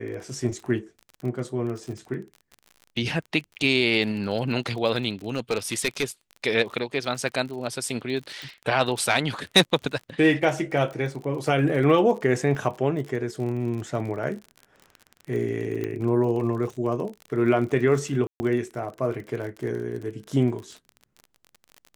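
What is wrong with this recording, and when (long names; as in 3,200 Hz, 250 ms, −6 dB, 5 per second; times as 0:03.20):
surface crackle 39 per second −33 dBFS
0:05.35–0:06.04: clipping −17.5 dBFS
0:08.42: click
0:12.55: drop-out 2.2 ms
0:15.84: click −18 dBFS
0:18.27–0:18.40: drop-out 130 ms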